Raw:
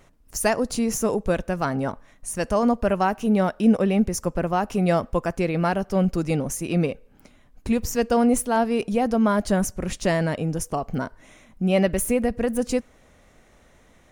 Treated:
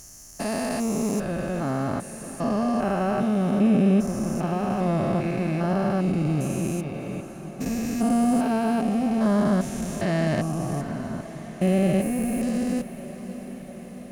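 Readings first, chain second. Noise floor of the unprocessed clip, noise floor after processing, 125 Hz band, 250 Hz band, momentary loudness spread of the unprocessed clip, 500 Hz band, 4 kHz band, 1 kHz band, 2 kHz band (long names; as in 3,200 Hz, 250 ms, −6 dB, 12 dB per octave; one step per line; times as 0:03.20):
−56 dBFS, −39 dBFS, +1.0 dB, +0.5 dB, 8 LU, −4.0 dB, −4.0 dB, −3.5 dB, −4.0 dB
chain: spectrum averaged block by block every 400 ms
notch comb filter 480 Hz
feedback delay with all-pass diffusion 656 ms, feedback 71%, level −14 dB
level +3 dB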